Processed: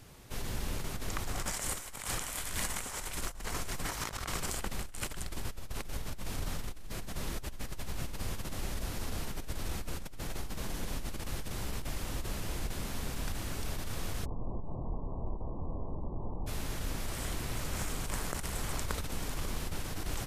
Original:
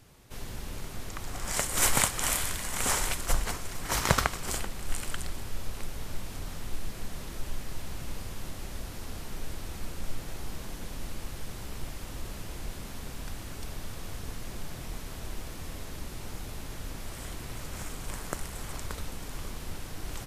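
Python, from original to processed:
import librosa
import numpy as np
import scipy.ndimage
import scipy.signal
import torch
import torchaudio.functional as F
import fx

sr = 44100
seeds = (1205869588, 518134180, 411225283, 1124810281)

y = fx.steep_lowpass(x, sr, hz=1100.0, slope=96, at=(14.24, 16.46), fade=0.02)
y = fx.over_compress(y, sr, threshold_db=-35.0, ratio=-1.0)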